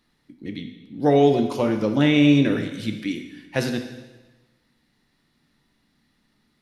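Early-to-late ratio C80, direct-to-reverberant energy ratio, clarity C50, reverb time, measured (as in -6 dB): 10.0 dB, 5.5 dB, 8.0 dB, 1.2 s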